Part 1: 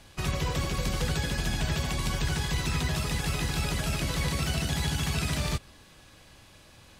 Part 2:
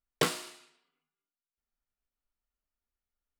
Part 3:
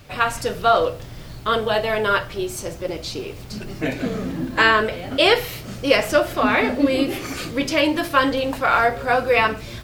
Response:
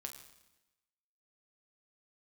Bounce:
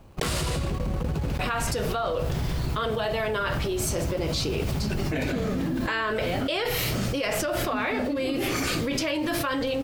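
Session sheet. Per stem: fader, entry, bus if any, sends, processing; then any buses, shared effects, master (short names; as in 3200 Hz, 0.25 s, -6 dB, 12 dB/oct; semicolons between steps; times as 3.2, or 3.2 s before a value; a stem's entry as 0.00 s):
-17.0 dB, 0.00 s, send -3 dB, median filter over 25 samples
+2.0 dB, 0.00 s, no send, compressor 2:1, threshold -42 dBFS, peak gain reduction 11.5 dB
-9.0 dB, 1.30 s, no send, compressor 4:1, threshold -19 dBFS, peak gain reduction 8.5 dB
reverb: on, RT60 1.0 s, pre-delay 7 ms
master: gate with hold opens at -34 dBFS; fast leveller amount 100%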